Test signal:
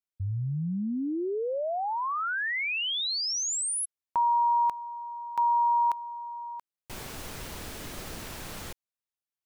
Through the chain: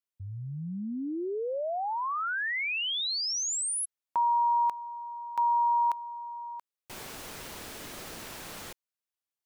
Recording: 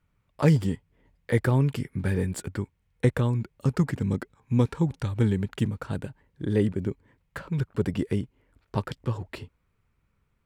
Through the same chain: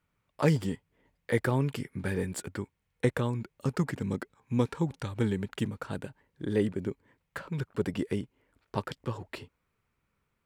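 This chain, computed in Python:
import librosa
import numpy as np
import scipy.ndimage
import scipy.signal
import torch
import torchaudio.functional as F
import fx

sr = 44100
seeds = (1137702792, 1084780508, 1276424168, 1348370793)

y = fx.low_shelf(x, sr, hz=140.0, db=-11.5)
y = F.gain(torch.from_numpy(y), -1.0).numpy()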